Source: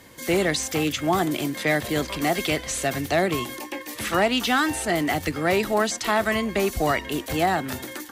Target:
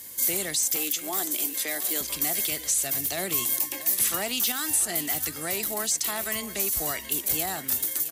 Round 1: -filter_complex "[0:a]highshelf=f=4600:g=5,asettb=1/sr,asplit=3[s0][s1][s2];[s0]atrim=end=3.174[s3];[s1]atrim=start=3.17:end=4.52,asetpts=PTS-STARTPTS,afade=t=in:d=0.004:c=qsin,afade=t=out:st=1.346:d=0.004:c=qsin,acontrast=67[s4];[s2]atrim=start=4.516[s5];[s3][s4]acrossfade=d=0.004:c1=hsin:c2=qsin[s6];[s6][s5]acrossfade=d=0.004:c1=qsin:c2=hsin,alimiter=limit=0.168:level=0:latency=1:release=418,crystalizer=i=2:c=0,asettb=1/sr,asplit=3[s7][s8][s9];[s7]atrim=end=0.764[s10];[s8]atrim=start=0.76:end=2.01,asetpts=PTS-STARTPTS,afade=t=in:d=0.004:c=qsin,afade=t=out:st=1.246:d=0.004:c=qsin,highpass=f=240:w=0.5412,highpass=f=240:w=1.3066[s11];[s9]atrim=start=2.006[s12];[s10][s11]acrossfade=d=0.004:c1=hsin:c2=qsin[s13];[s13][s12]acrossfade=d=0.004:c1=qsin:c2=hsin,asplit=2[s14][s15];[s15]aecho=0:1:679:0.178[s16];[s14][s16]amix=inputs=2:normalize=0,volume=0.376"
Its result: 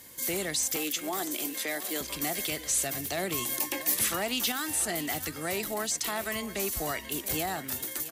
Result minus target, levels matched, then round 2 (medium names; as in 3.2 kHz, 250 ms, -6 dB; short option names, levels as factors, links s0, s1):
4 kHz band +2.5 dB
-filter_complex "[0:a]highshelf=f=4600:g=15.5,asettb=1/sr,asplit=3[s0][s1][s2];[s0]atrim=end=3.174[s3];[s1]atrim=start=3.17:end=4.52,asetpts=PTS-STARTPTS,afade=t=in:d=0.004:c=qsin,afade=t=out:st=1.346:d=0.004:c=qsin,acontrast=67[s4];[s2]atrim=start=4.516[s5];[s3][s4]acrossfade=d=0.004:c1=hsin:c2=qsin[s6];[s6][s5]acrossfade=d=0.004:c1=qsin:c2=hsin,alimiter=limit=0.168:level=0:latency=1:release=418,crystalizer=i=2:c=0,asettb=1/sr,asplit=3[s7][s8][s9];[s7]atrim=end=0.764[s10];[s8]atrim=start=0.76:end=2.01,asetpts=PTS-STARTPTS,afade=t=in:d=0.004:c=qsin,afade=t=out:st=1.246:d=0.004:c=qsin,highpass=f=240:w=0.5412,highpass=f=240:w=1.3066[s11];[s9]atrim=start=2.006[s12];[s10][s11]acrossfade=d=0.004:c1=hsin:c2=qsin[s13];[s13][s12]acrossfade=d=0.004:c1=qsin:c2=hsin,asplit=2[s14][s15];[s15]aecho=0:1:679:0.178[s16];[s14][s16]amix=inputs=2:normalize=0,volume=0.376"